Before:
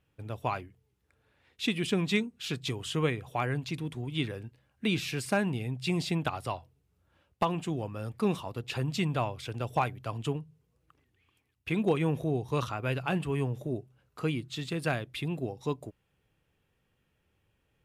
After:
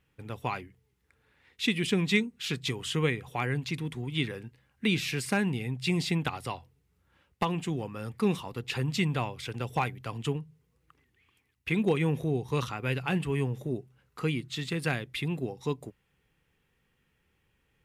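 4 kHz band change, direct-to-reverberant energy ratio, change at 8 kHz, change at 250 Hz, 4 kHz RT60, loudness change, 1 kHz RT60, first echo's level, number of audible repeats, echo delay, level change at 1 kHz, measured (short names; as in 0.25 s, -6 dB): +2.5 dB, none, +2.5 dB, +1.5 dB, none, +1.5 dB, none, none, none, none, -1.5 dB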